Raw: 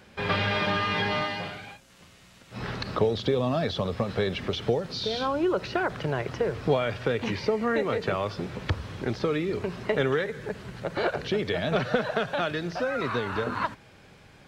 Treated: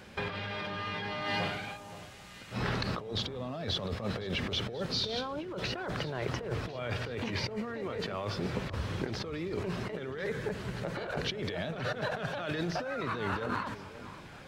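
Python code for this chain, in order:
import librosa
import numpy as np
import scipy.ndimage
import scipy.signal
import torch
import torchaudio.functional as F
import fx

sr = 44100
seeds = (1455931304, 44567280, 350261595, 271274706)

y = fx.over_compress(x, sr, threshold_db=-33.0, ratio=-1.0)
y = fx.echo_alternate(y, sr, ms=524, hz=1200.0, feedback_pct=57, wet_db=-13.5)
y = F.gain(torch.from_numpy(y), -2.5).numpy()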